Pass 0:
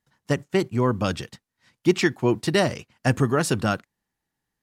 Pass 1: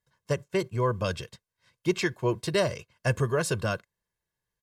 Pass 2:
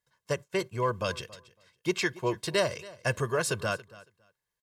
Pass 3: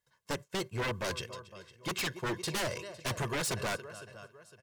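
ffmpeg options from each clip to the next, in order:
-af "aecho=1:1:1.9:0.72,volume=0.501"
-af "lowshelf=f=360:g=-8,aecho=1:1:278|556:0.1|0.017,volume=1.12"
-af "aecho=1:1:507|1014|1521:0.1|0.04|0.016,aeval=exprs='0.0422*(abs(mod(val(0)/0.0422+3,4)-2)-1)':c=same"

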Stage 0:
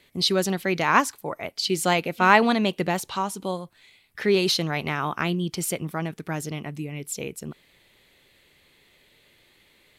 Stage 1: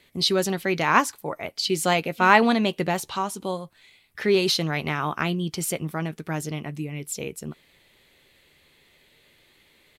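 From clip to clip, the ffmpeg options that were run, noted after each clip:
-filter_complex "[0:a]asplit=2[s0][s1];[s1]adelay=13,volume=0.2[s2];[s0][s2]amix=inputs=2:normalize=0"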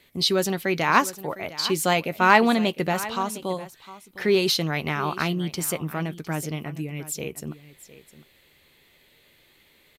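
-af "equalizer=f=14000:w=4.1:g=12,aecho=1:1:707:0.15"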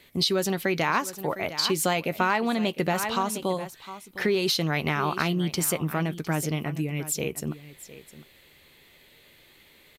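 -af "acompressor=threshold=0.0631:ratio=6,volume=1.41"

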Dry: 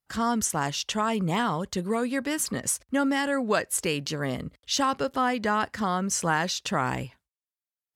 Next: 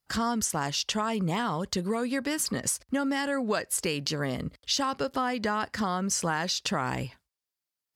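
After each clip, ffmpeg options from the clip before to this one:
-af "equalizer=f=4800:t=o:w=0.32:g=5.5,acompressor=threshold=0.0282:ratio=3,volume=1.58"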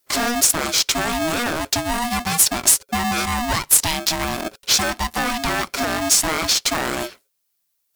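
-af "aeval=exprs='0.266*sin(PI/2*2*val(0)/0.266)':c=same,crystalizer=i=2:c=0,aeval=exprs='val(0)*sgn(sin(2*PI*480*n/s))':c=same,volume=0.708"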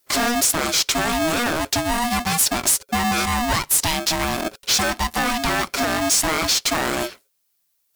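-af "asoftclip=type=tanh:threshold=0.158,volume=1.33"

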